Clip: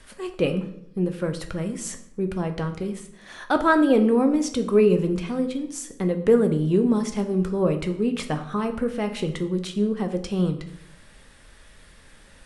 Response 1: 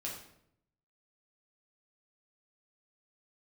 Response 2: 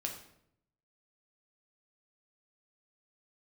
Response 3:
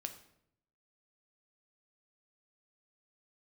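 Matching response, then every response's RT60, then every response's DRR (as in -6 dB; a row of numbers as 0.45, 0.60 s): 3; 0.70, 0.70, 0.70 s; -4.0, 1.0, 6.0 dB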